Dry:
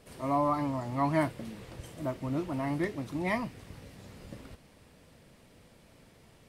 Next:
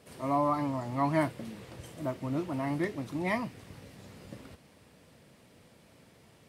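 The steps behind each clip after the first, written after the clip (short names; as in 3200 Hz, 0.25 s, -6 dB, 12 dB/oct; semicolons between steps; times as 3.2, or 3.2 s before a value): HPF 81 Hz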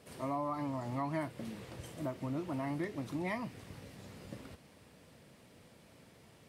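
compressor 4:1, threshold -33 dBFS, peak gain reduction 9 dB; gain -1 dB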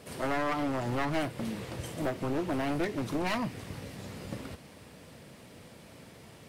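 one-sided fold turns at -36.5 dBFS; gain +8.5 dB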